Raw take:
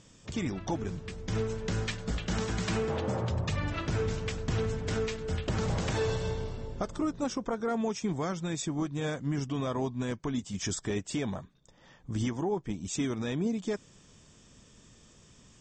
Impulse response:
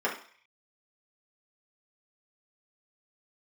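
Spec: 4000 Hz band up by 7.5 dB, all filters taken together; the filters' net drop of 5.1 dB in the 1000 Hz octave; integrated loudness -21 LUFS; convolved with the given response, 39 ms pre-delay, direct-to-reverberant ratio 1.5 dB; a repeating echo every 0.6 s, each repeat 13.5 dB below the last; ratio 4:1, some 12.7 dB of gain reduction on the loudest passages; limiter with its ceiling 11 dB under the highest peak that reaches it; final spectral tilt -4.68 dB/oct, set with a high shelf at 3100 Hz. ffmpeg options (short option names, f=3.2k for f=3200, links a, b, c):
-filter_complex "[0:a]equalizer=f=1k:t=o:g=-8,highshelf=f=3.1k:g=6,equalizer=f=4k:t=o:g=5.5,acompressor=threshold=-42dB:ratio=4,alimiter=level_in=13dB:limit=-24dB:level=0:latency=1,volume=-13dB,aecho=1:1:600|1200:0.211|0.0444,asplit=2[a][b];[1:a]atrim=start_sample=2205,adelay=39[c];[b][c]afir=irnorm=-1:irlink=0,volume=-12dB[d];[a][d]amix=inputs=2:normalize=0,volume=24dB"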